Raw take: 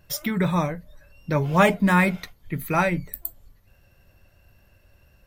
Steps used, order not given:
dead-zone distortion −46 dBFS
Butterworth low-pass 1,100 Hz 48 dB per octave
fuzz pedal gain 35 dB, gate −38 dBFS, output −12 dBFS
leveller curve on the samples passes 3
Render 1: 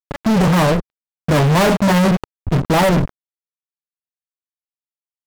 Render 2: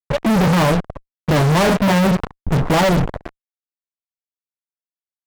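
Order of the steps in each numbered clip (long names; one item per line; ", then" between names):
Butterworth low-pass, then fuzz pedal, then dead-zone distortion, then leveller curve on the samples
leveller curve on the samples, then Butterworth low-pass, then dead-zone distortion, then fuzz pedal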